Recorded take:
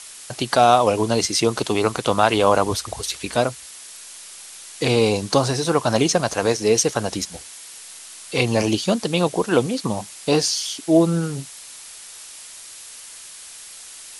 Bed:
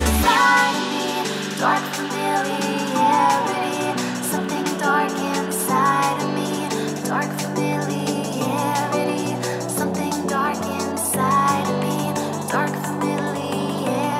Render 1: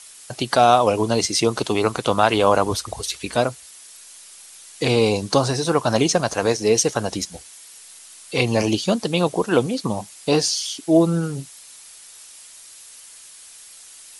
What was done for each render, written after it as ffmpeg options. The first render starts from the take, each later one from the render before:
-af "afftdn=nr=6:nf=-40"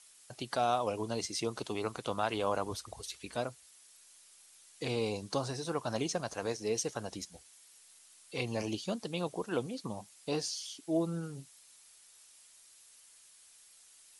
-af "volume=-16dB"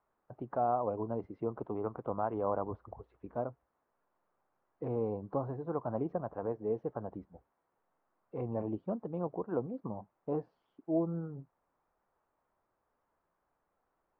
-af "lowpass=f=1.1k:w=0.5412,lowpass=f=1.1k:w=1.3066"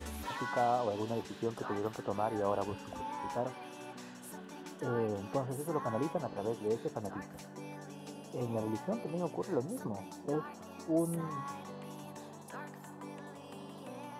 -filter_complex "[1:a]volume=-24.5dB[a];[0:a][a]amix=inputs=2:normalize=0"

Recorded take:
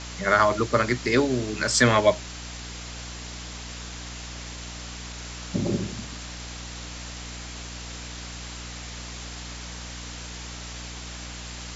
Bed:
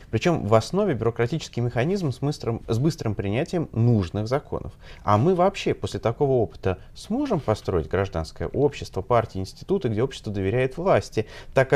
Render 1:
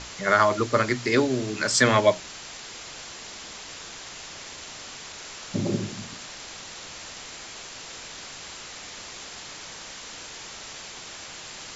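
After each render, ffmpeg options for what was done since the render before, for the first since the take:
-af "bandreject=f=60:t=h:w=6,bandreject=f=120:t=h:w=6,bandreject=f=180:t=h:w=6,bandreject=f=240:t=h:w=6,bandreject=f=300:t=h:w=6"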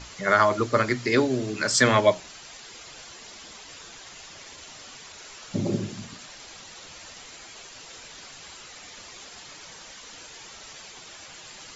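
-af "afftdn=nr=8:nf=-41"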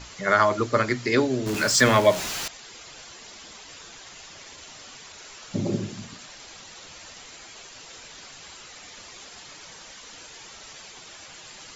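-filter_complex "[0:a]asettb=1/sr,asplit=3[a][b][c];[a]atrim=end=1.464[d];[b]atrim=start=1.46:end=2.48,asetpts=PTS-STARTPTS,afade=t=in:d=0.004:c=qsin,afade=t=out:st=1.016:d=0.004:c=qsin,aeval=exprs='val(0)+0.5*0.0473*sgn(val(0))':c=same[e];[c]atrim=start=2.476[f];[d][e]acrossfade=d=0.004:c1=hsin:c2=qsin[g];[g][f]acrossfade=d=0.004:c1=qsin:c2=hsin"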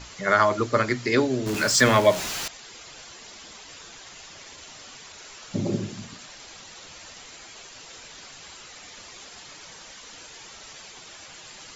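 -af anull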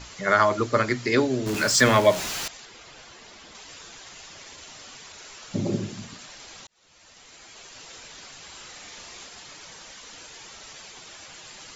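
-filter_complex "[0:a]asettb=1/sr,asplit=3[a][b][c];[a]atrim=end=2.654[d];[b]atrim=start=2.65:end=3.55,asetpts=PTS-STARTPTS,afade=t=in:d=0.004:c=qsin,afade=t=out:st=0.896:d=0.004:c=qsin,highshelf=f=5.3k:g=-10[e];[c]atrim=start=3.546[f];[d][e]acrossfade=d=0.004:c1=hsin:c2=qsin[g];[g][f]acrossfade=d=0.004:c1=qsin:c2=hsin,asettb=1/sr,asplit=3[h][i][j];[h]atrim=end=8.504[k];[i]atrim=start=8.5:end=9.27,asetpts=PTS-STARTPTS,afade=t=in:d=0.004:c=qsin,afade=t=out:st=0.766:d=0.004:c=qsin,asplit=2[l][m];[m]adelay=41,volume=-5dB[n];[l][n]amix=inputs=2:normalize=0,atrim=end_sample=33957[o];[j]atrim=start=9.266[p];[k][o]acrossfade=d=0.004:c1=hsin:c2=qsin[q];[q][p]acrossfade=d=0.004:c1=qsin:c2=hsin,asplit=2[r][s];[r]atrim=end=6.67,asetpts=PTS-STARTPTS,afade=t=out:st=6.666:d=0.004:c=hsin[t];[s]atrim=start=6.67,asetpts=PTS-STARTPTS,afade=t=in:d=1.14[u];[t][u]concat=n=2:v=0:a=1"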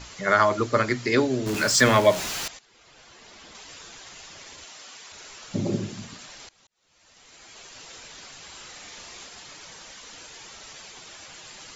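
-filter_complex "[0:a]asettb=1/sr,asplit=3[a][b][c];[a]atrim=end=4.664[d];[b]atrim=start=4.66:end=5.12,asetpts=PTS-STARTPTS,afade=t=in:d=0.004:c=qsin,afade=t=out:st=0.456:d=0.004:c=qsin,highpass=f=470:p=1[e];[c]atrim=start=5.116[f];[d][e]acrossfade=d=0.004:c1=hsin:c2=qsin[g];[g][f]acrossfade=d=0.004:c1=qsin:c2=hsin,asplit=3[h][i][j];[h]atrim=end=2.59,asetpts=PTS-STARTPTS,afade=t=out:st=2.586:d=0.004:c=hsin:silence=0.141254[k];[i]atrim=start=2.59:end=6.49,asetpts=PTS-STARTPTS,afade=t=in:d=0.86:silence=0.141254,afade=t=out:st=3.896:d=0.004:c=hsin:silence=0.0707946[l];[j]atrim=start=6.49,asetpts=PTS-STARTPTS,afade=t=in:d=1.07:silence=0.0707946[m];[k][l][m]concat=n=3:v=0:a=1"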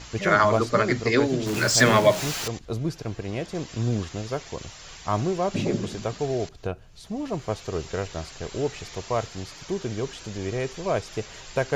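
-filter_complex "[1:a]volume=-6dB[a];[0:a][a]amix=inputs=2:normalize=0"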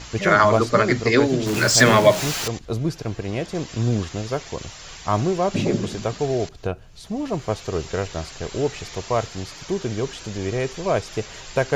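-af "volume=4dB,alimiter=limit=-2dB:level=0:latency=1"

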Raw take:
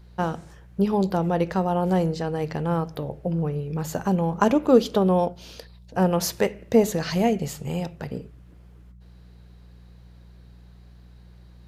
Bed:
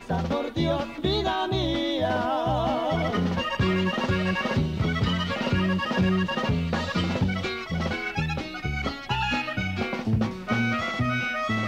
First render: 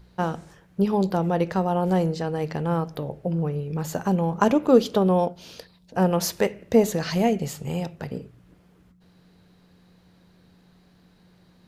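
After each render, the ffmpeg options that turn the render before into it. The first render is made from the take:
-af "bandreject=f=60:t=h:w=4,bandreject=f=120:t=h:w=4"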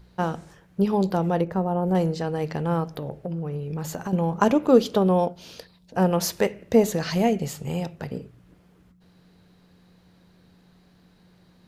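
-filter_complex "[0:a]asettb=1/sr,asplit=3[a][b][c];[a]atrim=end=1.414[d];[b]atrim=start=1.41:end=1.95,asetpts=PTS-STARTPTS,afade=t=in:d=0.004:c=qsin,afade=t=out:st=0.536:d=0.004:c=qsin,equalizer=f=4.6k:w=0.42:g=-15[e];[c]atrim=start=1.946[f];[d][e]acrossfade=d=0.004:c1=hsin:c2=qsin[g];[g][f]acrossfade=d=0.004:c1=qsin:c2=hsin,asettb=1/sr,asplit=3[h][i][j];[h]atrim=end=2.954[k];[i]atrim=start=2.95:end=4.13,asetpts=PTS-STARTPTS,afade=t=in:d=0.004:c=qsin,afade=t=out:st=1.176:d=0.004:c=qsin,acompressor=threshold=-26dB:ratio=6:attack=3.2:release=140:knee=1:detection=peak[l];[j]atrim=start=4.126[m];[k][l]acrossfade=d=0.004:c1=hsin:c2=qsin[n];[n][m]acrossfade=d=0.004:c1=qsin:c2=hsin"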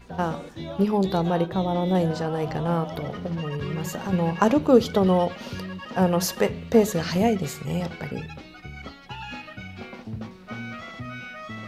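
-filter_complex "[1:a]volume=-10.5dB[a];[0:a][a]amix=inputs=2:normalize=0"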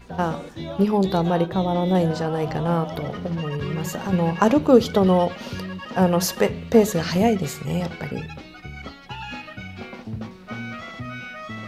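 -af "volume=2.5dB,alimiter=limit=-3dB:level=0:latency=1"

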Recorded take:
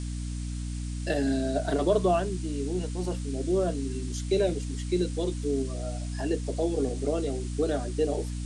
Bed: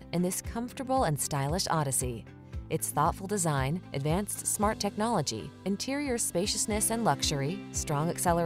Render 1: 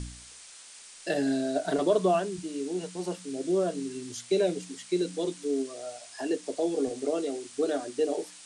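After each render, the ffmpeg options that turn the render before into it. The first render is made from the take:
-af "bandreject=f=60:t=h:w=4,bandreject=f=120:t=h:w=4,bandreject=f=180:t=h:w=4,bandreject=f=240:t=h:w=4,bandreject=f=300:t=h:w=4"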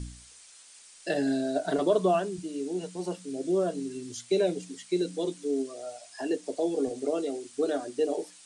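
-af "afftdn=nr=6:nf=-49"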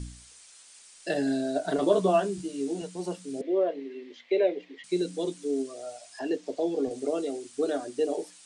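-filter_complex "[0:a]asettb=1/sr,asplit=3[a][b][c];[a]atrim=end=1.814[d];[b]atrim=start=1.81:end=2.82,asetpts=PTS-STARTPTS,afade=t=in:d=0.004:c=qsin,afade=t=out:st=1.006:d=0.004:c=qsin,asplit=2[e][f];[f]adelay=15,volume=-2.5dB[g];[e][g]amix=inputs=2:normalize=0,atrim=end_sample=44541[h];[c]atrim=start=2.816[i];[d][h]acrossfade=d=0.004:c1=hsin:c2=qsin[j];[j][i]acrossfade=d=0.004:c1=qsin:c2=hsin,asettb=1/sr,asplit=3[k][l][m];[k]atrim=end=3.414[n];[l]atrim=start=3.41:end=4.84,asetpts=PTS-STARTPTS,afade=t=in:d=0.004:c=qsin,afade=t=out:st=1.426:d=0.004:c=qsin,highpass=f=310:w=0.5412,highpass=f=310:w=1.3066,equalizer=f=540:t=q:w=4:g=5,equalizer=f=1.4k:t=q:w=4:g=-8,equalizer=f=2k:t=q:w=4:g=10,lowpass=f=3.3k:w=0.5412,lowpass=f=3.3k:w=1.3066[o];[m]atrim=start=4.836[p];[n][o]acrossfade=d=0.004:c1=hsin:c2=qsin[q];[q][p]acrossfade=d=0.004:c1=qsin:c2=hsin,asettb=1/sr,asplit=3[r][s][t];[r]atrim=end=6.194[u];[s]atrim=start=6.19:end=6.91,asetpts=PTS-STARTPTS,afade=t=in:d=0.004:c=qsin,afade=t=out:st=0.716:d=0.004:c=qsin,lowpass=5.5k[v];[t]atrim=start=6.906[w];[u][v]acrossfade=d=0.004:c1=hsin:c2=qsin[x];[x][w]acrossfade=d=0.004:c1=qsin:c2=hsin"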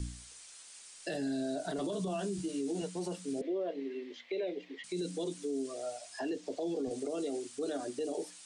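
-filter_complex "[0:a]acrossover=split=250|3000[a][b][c];[b]acompressor=threshold=-31dB:ratio=6[d];[a][d][c]amix=inputs=3:normalize=0,alimiter=level_in=4dB:limit=-24dB:level=0:latency=1:release=30,volume=-4dB"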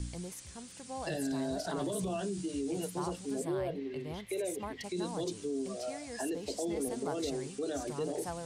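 -filter_complex "[1:a]volume=-14dB[a];[0:a][a]amix=inputs=2:normalize=0"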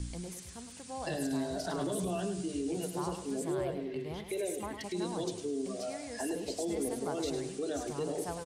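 -af "aecho=1:1:104|208|312|416:0.355|0.131|0.0486|0.018"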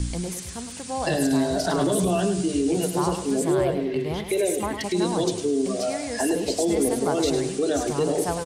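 -af "volume=12dB"

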